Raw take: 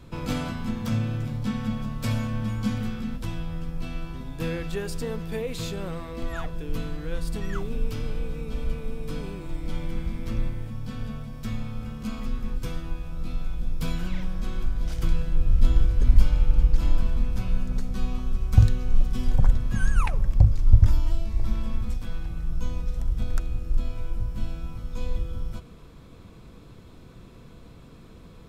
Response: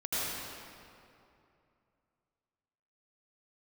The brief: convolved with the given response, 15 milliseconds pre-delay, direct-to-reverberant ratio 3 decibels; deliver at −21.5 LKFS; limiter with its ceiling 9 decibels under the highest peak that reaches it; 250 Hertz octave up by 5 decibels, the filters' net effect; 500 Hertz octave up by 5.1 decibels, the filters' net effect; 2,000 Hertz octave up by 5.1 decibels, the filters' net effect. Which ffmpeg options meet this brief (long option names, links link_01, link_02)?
-filter_complex "[0:a]equalizer=frequency=250:width_type=o:gain=5.5,equalizer=frequency=500:width_type=o:gain=4,equalizer=frequency=2000:width_type=o:gain=6.5,alimiter=limit=-10.5dB:level=0:latency=1,asplit=2[link_01][link_02];[1:a]atrim=start_sample=2205,adelay=15[link_03];[link_02][link_03]afir=irnorm=-1:irlink=0,volume=-11dB[link_04];[link_01][link_04]amix=inputs=2:normalize=0,volume=5dB"